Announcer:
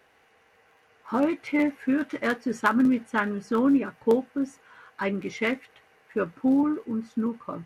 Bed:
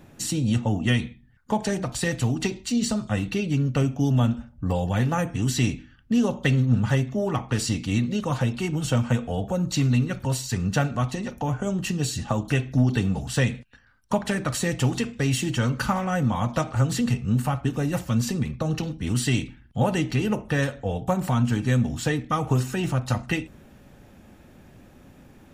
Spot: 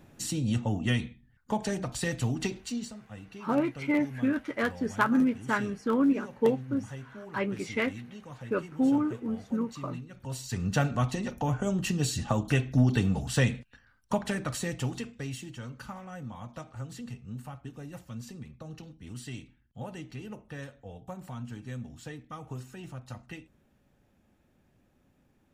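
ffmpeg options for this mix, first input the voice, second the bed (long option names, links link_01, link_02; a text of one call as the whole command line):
ffmpeg -i stem1.wav -i stem2.wav -filter_complex "[0:a]adelay=2350,volume=-3dB[link_01];[1:a]volume=11.5dB,afade=type=out:start_time=2.58:duration=0.34:silence=0.199526,afade=type=in:start_time=10.12:duration=0.76:silence=0.141254,afade=type=out:start_time=13.6:duration=1.92:silence=0.177828[link_02];[link_01][link_02]amix=inputs=2:normalize=0" out.wav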